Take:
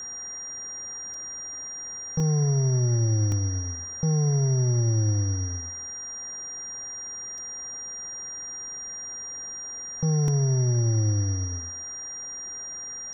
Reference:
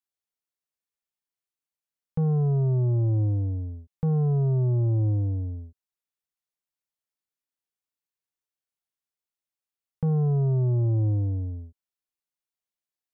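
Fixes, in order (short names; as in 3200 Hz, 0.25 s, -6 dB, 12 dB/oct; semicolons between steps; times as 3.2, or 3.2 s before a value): notch 5700 Hz, Q 30; interpolate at 1.14/2.2/3.32/7.38/10.28, 1.9 ms; denoiser 30 dB, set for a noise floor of -37 dBFS; inverse comb 0.218 s -19 dB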